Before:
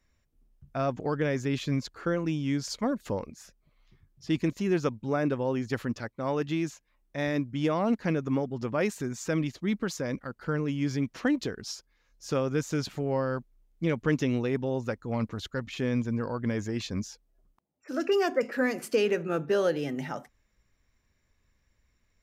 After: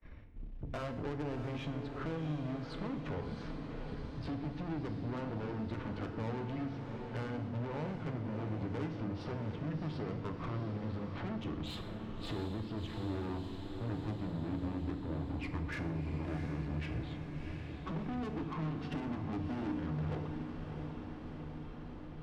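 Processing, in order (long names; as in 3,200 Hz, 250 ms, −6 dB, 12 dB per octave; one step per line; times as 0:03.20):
pitch glide at a constant tempo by −10 semitones starting unshifted
low-pass filter 3,400 Hz 24 dB per octave
spectral tilt −2 dB per octave
downward expander −56 dBFS
downward compressor 6 to 1, threshold −42 dBFS, peak gain reduction 23.5 dB
tube saturation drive 51 dB, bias 0.5
on a send: feedback delay with all-pass diffusion 688 ms, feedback 63%, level −8 dB
on the sum: feedback delay network reverb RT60 1 s, low-frequency decay 1.5×, high-frequency decay 0.85×, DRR 6.5 dB
multiband upward and downward compressor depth 40%
level +13 dB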